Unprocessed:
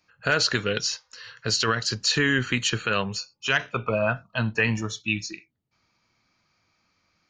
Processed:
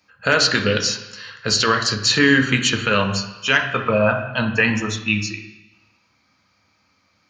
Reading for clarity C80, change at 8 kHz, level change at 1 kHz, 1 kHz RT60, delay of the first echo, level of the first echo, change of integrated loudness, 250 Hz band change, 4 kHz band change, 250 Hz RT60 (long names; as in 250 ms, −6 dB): 11.0 dB, +5.5 dB, +7.0 dB, 1.1 s, no echo audible, no echo audible, +6.5 dB, +8.5 dB, +6.0 dB, 1.0 s